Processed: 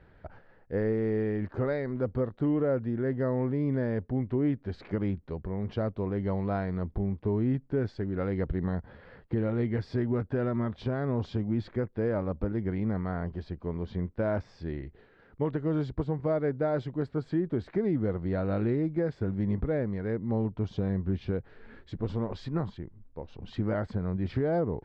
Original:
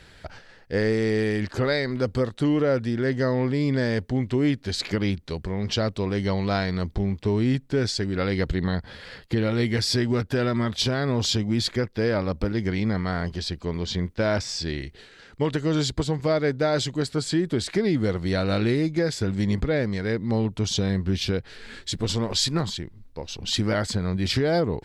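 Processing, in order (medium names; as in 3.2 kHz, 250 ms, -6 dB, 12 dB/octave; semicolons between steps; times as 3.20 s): low-pass 1.2 kHz 12 dB/octave; trim -5 dB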